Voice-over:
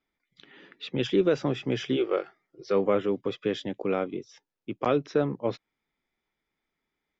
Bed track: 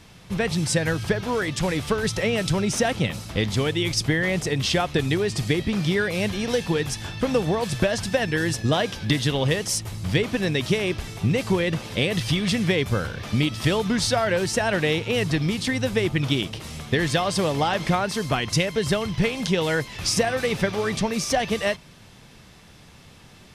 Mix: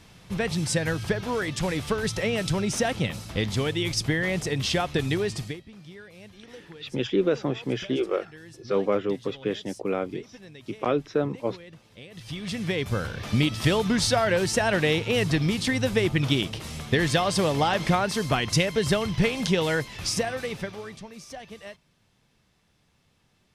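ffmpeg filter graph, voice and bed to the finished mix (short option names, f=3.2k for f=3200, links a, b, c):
-filter_complex "[0:a]adelay=6000,volume=0dB[a];[1:a]volume=19dB,afade=t=out:st=5.26:d=0.35:silence=0.105925,afade=t=in:st=12.11:d=1.23:silence=0.0794328,afade=t=out:st=19.48:d=1.52:silence=0.133352[b];[a][b]amix=inputs=2:normalize=0"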